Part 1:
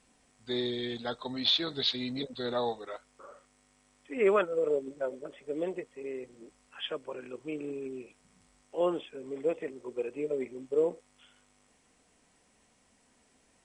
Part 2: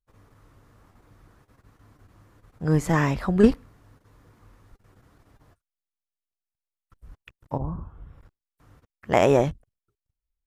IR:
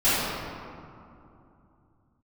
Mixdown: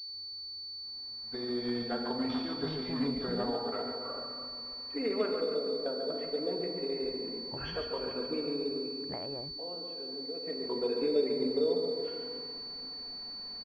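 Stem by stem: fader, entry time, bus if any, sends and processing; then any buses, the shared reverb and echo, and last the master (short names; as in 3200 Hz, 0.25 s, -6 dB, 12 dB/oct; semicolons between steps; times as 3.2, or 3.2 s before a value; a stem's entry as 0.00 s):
8.43 s -3.5 dB -> 9.01 s -12.5 dB -> 10.3 s -12.5 dB -> 10.63 s -0.5 dB, 0.85 s, send -20 dB, echo send -5.5 dB, compressor 6:1, threshold -39 dBFS, peak gain reduction 17 dB; comb 4.3 ms, depth 31%; AGC gain up to 8 dB
-14.0 dB, 0.00 s, no send, no echo send, compressor 6:1, threshold -24 dBFS, peak gain reduction 13.5 dB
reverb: on, RT60 2.7 s, pre-delay 3 ms
echo: feedback echo 0.141 s, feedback 51%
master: pulse-width modulation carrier 4500 Hz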